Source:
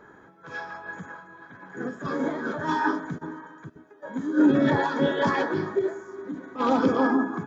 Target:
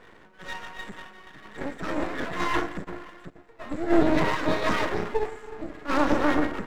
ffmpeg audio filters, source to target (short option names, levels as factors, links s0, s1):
-af "asetrate=49392,aresample=44100,aeval=exprs='max(val(0),0)':c=same,volume=1.41"